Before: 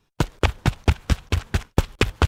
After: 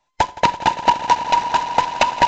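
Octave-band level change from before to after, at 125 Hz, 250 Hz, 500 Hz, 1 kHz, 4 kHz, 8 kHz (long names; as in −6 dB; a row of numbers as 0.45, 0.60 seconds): −14.5, −4.0, +3.0, +17.0, +5.0, +4.0 decibels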